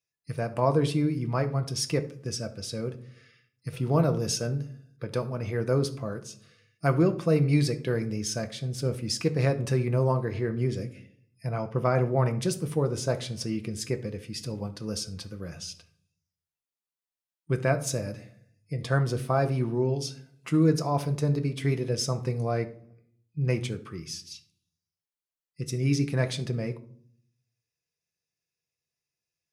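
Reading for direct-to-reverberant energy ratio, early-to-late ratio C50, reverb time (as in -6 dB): 7.5 dB, 15.0 dB, 0.55 s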